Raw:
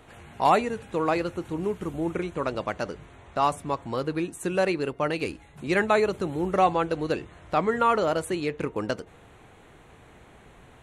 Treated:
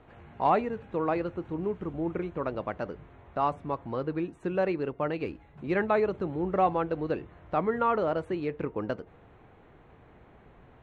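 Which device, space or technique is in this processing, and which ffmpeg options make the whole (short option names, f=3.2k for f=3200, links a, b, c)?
phone in a pocket: -af "lowpass=3.7k,highshelf=f=2.4k:g=-11.5,volume=-2.5dB"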